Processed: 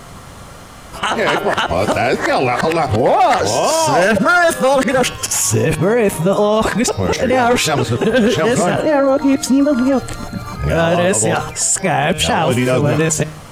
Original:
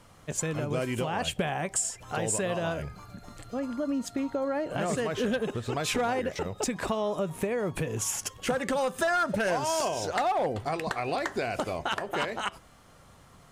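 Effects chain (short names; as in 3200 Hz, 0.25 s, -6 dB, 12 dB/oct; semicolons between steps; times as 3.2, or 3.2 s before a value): whole clip reversed; de-hum 154.2 Hz, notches 37; maximiser +25 dB; gain -5 dB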